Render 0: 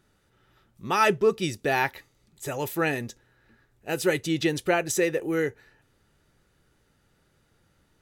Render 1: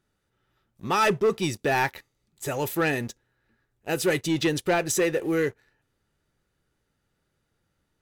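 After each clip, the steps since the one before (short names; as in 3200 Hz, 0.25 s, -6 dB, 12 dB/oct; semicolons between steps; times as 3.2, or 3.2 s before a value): sample leveller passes 2; gain -5 dB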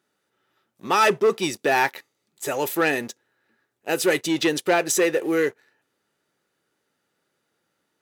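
HPF 270 Hz 12 dB/oct; gain +4 dB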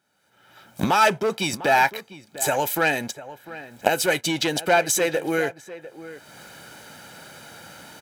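recorder AGC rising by 32 dB/s; comb 1.3 ms, depth 57%; outdoor echo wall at 120 m, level -15 dB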